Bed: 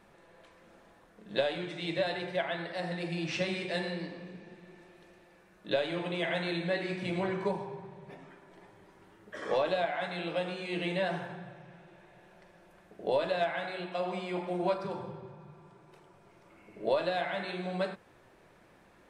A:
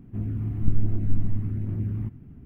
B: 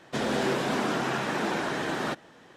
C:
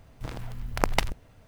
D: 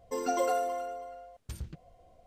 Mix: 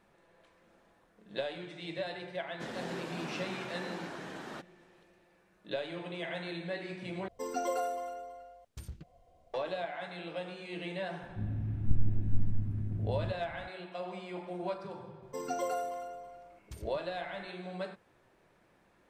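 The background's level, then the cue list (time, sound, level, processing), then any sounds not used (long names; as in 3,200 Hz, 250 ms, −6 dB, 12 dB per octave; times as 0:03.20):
bed −6.5 dB
0:02.47: mix in B −14 dB
0:07.28: overwrite with D −4.5 dB
0:11.23: mix in A −11.5 dB + low-shelf EQ 230 Hz +6.5 dB
0:15.22: mix in D −5.5 dB
not used: C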